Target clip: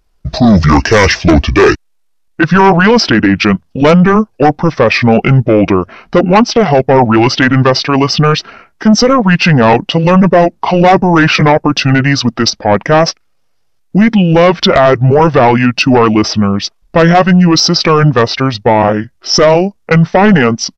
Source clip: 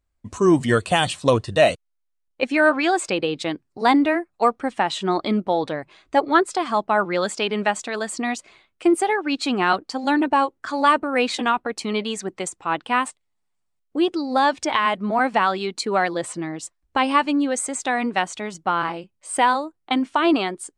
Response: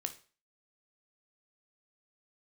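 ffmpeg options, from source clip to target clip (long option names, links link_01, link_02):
-af "asetrate=27781,aresample=44100,atempo=1.5874,acontrast=81,apsyclip=13.5dB,volume=-2dB"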